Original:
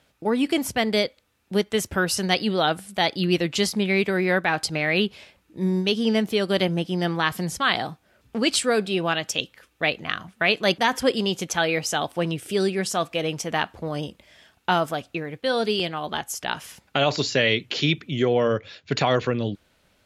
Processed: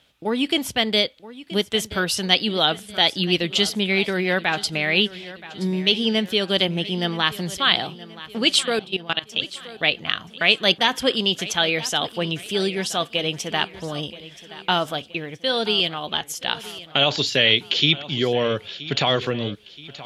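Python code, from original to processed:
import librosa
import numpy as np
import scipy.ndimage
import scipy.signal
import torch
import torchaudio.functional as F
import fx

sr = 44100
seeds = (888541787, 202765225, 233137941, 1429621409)

y = fx.peak_eq(x, sr, hz=3300.0, db=10.5, octaves=0.71)
y = fx.level_steps(y, sr, step_db=20, at=(8.63, 9.42))
y = fx.echo_feedback(y, sr, ms=975, feedback_pct=46, wet_db=-17.0)
y = F.gain(torch.from_numpy(y), -1.0).numpy()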